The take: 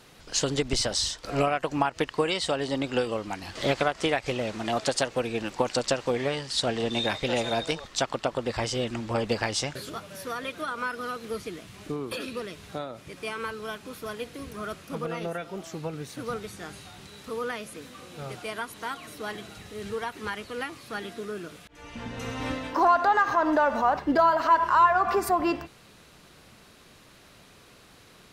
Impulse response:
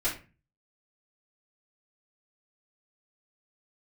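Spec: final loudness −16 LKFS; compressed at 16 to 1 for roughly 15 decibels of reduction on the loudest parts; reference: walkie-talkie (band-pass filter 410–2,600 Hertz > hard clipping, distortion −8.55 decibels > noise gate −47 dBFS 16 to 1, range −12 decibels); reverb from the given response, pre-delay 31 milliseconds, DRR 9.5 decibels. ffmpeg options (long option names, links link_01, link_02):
-filter_complex "[0:a]acompressor=threshold=-30dB:ratio=16,asplit=2[link_01][link_02];[1:a]atrim=start_sample=2205,adelay=31[link_03];[link_02][link_03]afir=irnorm=-1:irlink=0,volume=-17.5dB[link_04];[link_01][link_04]amix=inputs=2:normalize=0,highpass=410,lowpass=2600,asoftclip=type=hard:threshold=-36dB,agate=range=-12dB:threshold=-47dB:ratio=16,volume=25dB"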